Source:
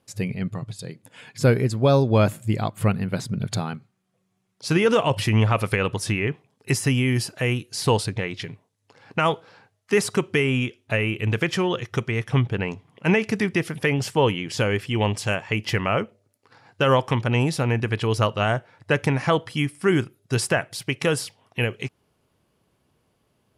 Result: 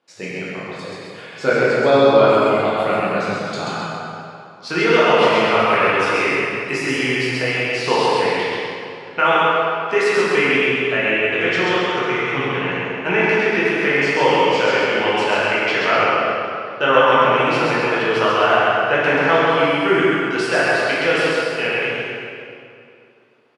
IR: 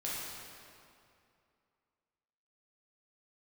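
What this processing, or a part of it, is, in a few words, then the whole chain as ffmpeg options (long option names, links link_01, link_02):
station announcement: -filter_complex "[0:a]highpass=370,lowpass=4100,equalizer=frequency=1400:width_type=o:width=0.25:gain=4.5,aecho=1:1:134.1|262.4:0.708|0.316[link_01];[1:a]atrim=start_sample=2205[link_02];[link_01][link_02]afir=irnorm=-1:irlink=0,volume=4dB"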